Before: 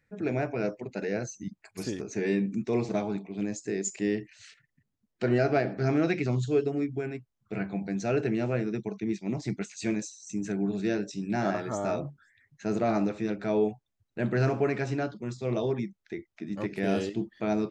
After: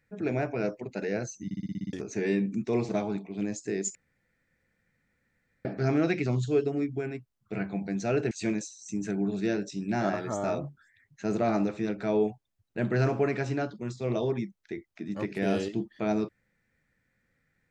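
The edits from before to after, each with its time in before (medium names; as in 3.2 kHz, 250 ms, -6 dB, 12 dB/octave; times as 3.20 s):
1.45 s: stutter in place 0.06 s, 8 plays
3.95–5.65 s: room tone
8.31–9.72 s: delete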